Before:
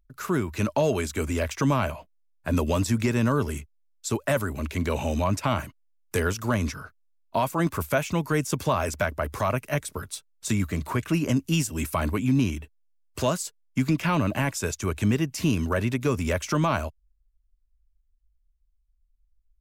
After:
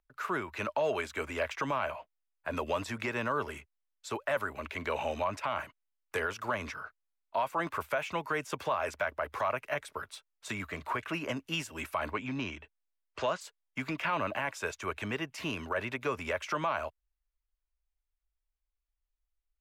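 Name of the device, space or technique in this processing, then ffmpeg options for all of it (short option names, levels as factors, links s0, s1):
DJ mixer with the lows and highs turned down: -filter_complex "[0:a]acrossover=split=490 3400:gain=0.126 1 0.158[s0][s1][s2];[s0][s1][s2]amix=inputs=3:normalize=0,alimiter=limit=0.0891:level=0:latency=1:release=68,asplit=3[s3][s4][s5];[s3]afade=t=out:st=12.1:d=0.02[s6];[s4]lowpass=f=7000:w=0.5412,lowpass=f=7000:w=1.3066,afade=t=in:st=12.1:d=0.02,afade=t=out:st=13.4:d=0.02[s7];[s5]afade=t=in:st=13.4:d=0.02[s8];[s6][s7][s8]amix=inputs=3:normalize=0"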